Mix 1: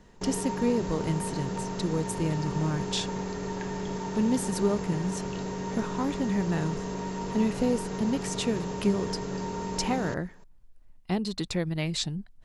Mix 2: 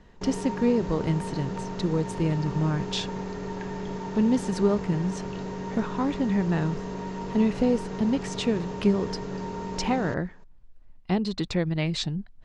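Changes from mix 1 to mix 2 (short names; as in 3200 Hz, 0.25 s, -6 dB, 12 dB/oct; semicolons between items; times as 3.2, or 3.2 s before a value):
speech +3.5 dB; master: add air absorption 100 m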